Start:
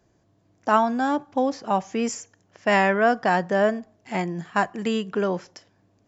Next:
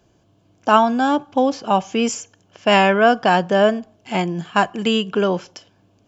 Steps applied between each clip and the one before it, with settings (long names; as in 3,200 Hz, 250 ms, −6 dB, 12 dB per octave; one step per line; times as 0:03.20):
parametric band 3,000 Hz +8.5 dB 0.37 octaves
notch filter 1,900 Hz, Q 5.8
level +5.5 dB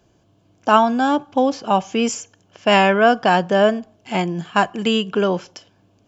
no processing that can be heard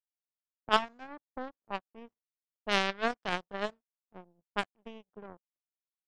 power curve on the samples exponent 3
low-pass that shuts in the quiet parts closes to 530 Hz, open at −22.5 dBFS
level −6.5 dB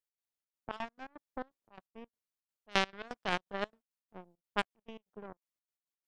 gate pattern "x.xxx.xx.x." 169 BPM −24 dB